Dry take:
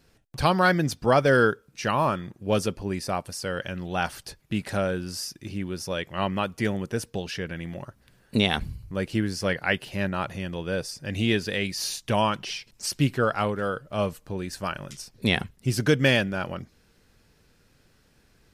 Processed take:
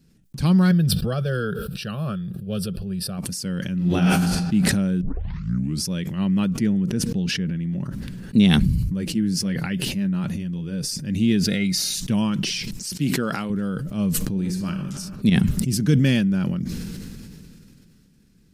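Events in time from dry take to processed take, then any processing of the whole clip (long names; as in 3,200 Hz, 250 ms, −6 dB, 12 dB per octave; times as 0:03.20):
0:00.71–0:03.18: phaser with its sweep stopped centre 1,400 Hz, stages 8
0:03.76–0:04.39: thrown reverb, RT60 1.2 s, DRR −5 dB
0:05.01: tape start 0.85 s
0:06.45–0:08.38: high-shelf EQ 5,500 Hz −10 dB
0:08.88–0:10.81: flanger 1.2 Hz, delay 0.5 ms, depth 6.4 ms, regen −50%
0:11.45–0:11.95: hollow resonant body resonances 670/1,400/2,100/3,800 Hz, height 15 dB
0:12.95–0:13.50: high-pass filter 370 Hz 6 dB per octave
0:14.22–0:14.78: thrown reverb, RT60 1.2 s, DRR 5 dB
0:15.30–0:16.00: fade in, from −18.5 dB
whole clip: drawn EQ curve 110 Hz 0 dB, 180 Hz +12 dB, 670 Hz −13 dB, 7,300 Hz −1 dB; level that may fall only so fast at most 21 dB per second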